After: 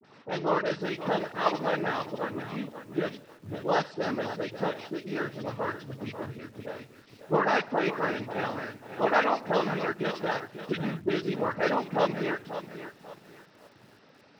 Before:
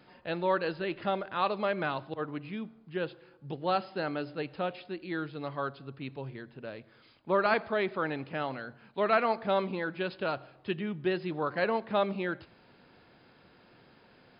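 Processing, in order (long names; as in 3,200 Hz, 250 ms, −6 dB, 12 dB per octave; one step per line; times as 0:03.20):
all-pass dispersion highs, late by 43 ms, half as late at 1,100 Hz
cochlear-implant simulation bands 12
feedback echo at a low word length 540 ms, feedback 35%, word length 9 bits, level −11 dB
level +2.5 dB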